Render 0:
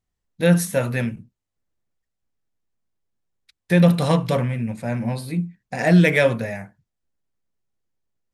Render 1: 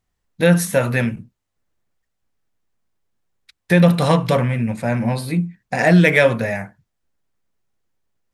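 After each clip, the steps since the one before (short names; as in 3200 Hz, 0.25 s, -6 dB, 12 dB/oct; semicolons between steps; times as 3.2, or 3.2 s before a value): bell 1300 Hz +3.5 dB 2.4 oct; in parallel at 0 dB: compressor, threshold -21 dBFS, peak gain reduction 12 dB; on the sum: gain -1 dB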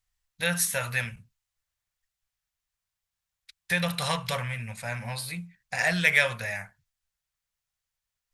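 passive tone stack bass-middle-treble 10-0-10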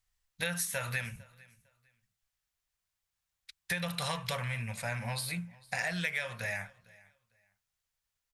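compressor 6:1, threshold -31 dBFS, peak gain reduction 15 dB; feedback echo 0.453 s, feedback 23%, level -23.5 dB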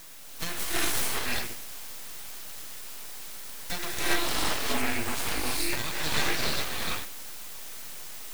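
in parallel at -10 dB: requantised 6-bit, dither triangular; on the sum: non-linear reverb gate 0.45 s rising, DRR -6.5 dB; full-wave rectifier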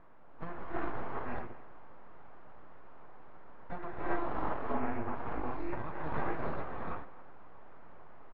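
ladder low-pass 1400 Hz, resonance 25%; speakerphone echo 0.26 s, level -18 dB; gain +2 dB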